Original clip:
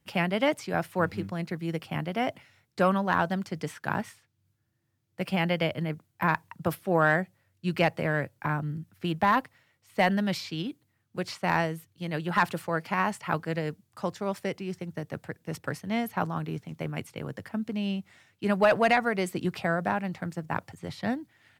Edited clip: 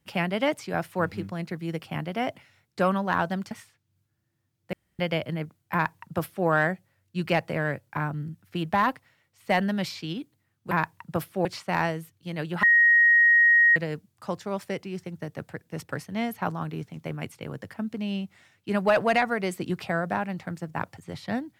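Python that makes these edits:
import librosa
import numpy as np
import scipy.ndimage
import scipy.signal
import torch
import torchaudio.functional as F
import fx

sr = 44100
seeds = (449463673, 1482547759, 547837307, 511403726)

y = fx.edit(x, sr, fx.cut(start_s=3.51, length_s=0.49),
    fx.room_tone_fill(start_s=5.22, length_s=0.26),
    fx.duplicate(start_s=6.22, length_s=0.74, to_s=11.2),
    fx.bleep(start_s=12.38, length_s=1.13, hz=1880.0, db=-14.5), tone=tone)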